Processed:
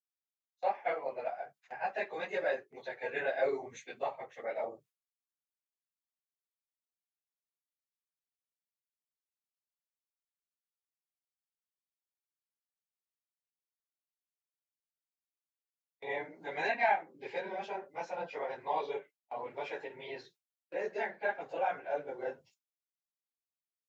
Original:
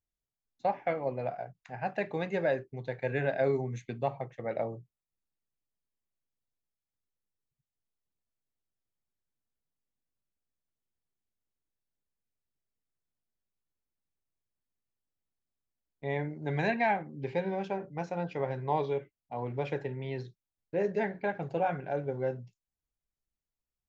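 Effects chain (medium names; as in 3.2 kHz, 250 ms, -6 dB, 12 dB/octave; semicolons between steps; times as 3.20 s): phase randomisation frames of 50 ms; gate with hold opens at -41 dBFS; high-pass 600 Hz 12 dB/octave; tape noise reduction on one side only encoder only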